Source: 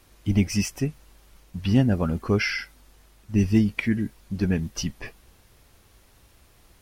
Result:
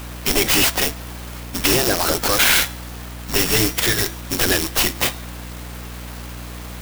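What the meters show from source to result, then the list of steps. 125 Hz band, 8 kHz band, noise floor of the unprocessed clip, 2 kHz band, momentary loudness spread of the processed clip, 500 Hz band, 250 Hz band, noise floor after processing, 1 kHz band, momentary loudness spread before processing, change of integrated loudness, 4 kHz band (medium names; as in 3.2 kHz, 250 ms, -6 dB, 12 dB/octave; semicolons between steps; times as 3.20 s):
-3.0 dB, +17.5 dB, -58 dBFS, +11.5 dB, 19 LU, +7.5 dB, -2.5 dB, -33 dBFS, +15.0 dB, 12 LU, +7.5 dB, +17.5 dB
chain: sorted samples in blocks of 8 samples; bass shelf 360 Hz -9.5 dB; in parallel at 0 dB: compression, threshold -33 dBFS, peak gain reduction 13 dB; on the sum: spectral gate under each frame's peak -10 dB weak; peak limiter -21 dBFS, peak gain reduction 11.5 dB; de-hum 336.7 Hz, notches 30; hum 60 Hz, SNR 14 dB; treble shelf 9 kHz +7 dB; sine folder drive 9 dB, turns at -14.5 dBFS; sampling jitter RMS 0.034 ms; trim +6.5 dB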